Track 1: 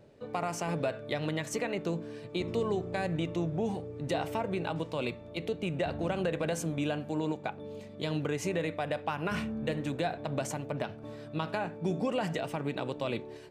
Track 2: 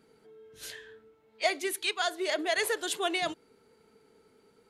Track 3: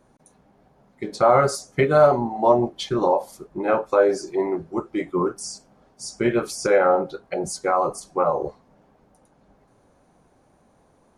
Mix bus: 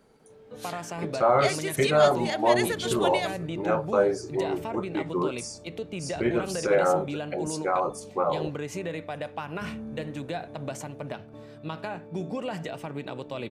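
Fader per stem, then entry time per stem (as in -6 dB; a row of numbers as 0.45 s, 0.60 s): -1.5 dB, -0.5 dB, -5.0 dB; 0.30 s, 0.00 s, 0.00 s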